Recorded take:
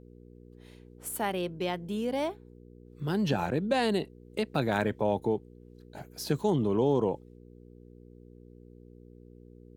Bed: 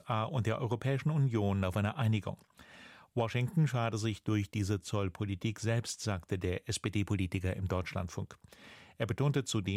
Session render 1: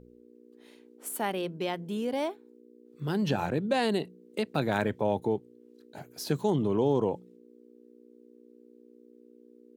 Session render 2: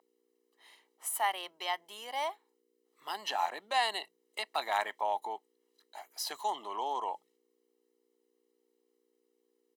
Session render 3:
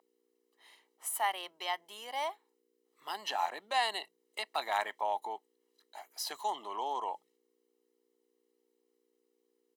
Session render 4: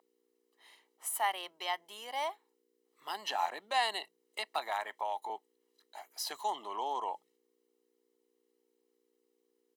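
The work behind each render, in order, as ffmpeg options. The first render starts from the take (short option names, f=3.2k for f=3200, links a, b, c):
-af "bandreject=f=60:t=h:w=4,bandreject=f=120:t=h:w=4,bandreject=f=180:t=h:w=4"
-af "highpass=f=600:w=0.5412,highpass=f=600:w=1.3066,aecho=1:1:1:0.68"
-af "volume=-1dB"
-filter_complex "[0:a]asettb=1/sr,asplit=3[a][b][c];[a]atrim=end=4.584[d];[b]atrim=start=4.58:end=5.3,asetpts=PTS-STARTPTS,afade=t=in:d=0.004:c=qsin,afade=t=out:st=0.716:d=0.004:c=qsin,acrossover=split=490|1800|6000[e][f][g][h];[e]acompressor=threshold=-55dB:ratio=3[i];[f]acompressor=threshold=-33dB:ratio=3[j];[g]acompressor=threshold=-46dB:ratio=3[k];[h]acompressor=threshold=-58dB:ratio=3[l];[i][j][k][l]amix=inputs=4:normalize=0[m];[c]atrim=start=5.296[n];[d][m]acrossfade=d=0.004:c1=hsin:c2=qsin[o];[o][n]acrossfade=d=0.004:c1=qsin:c2=hsin"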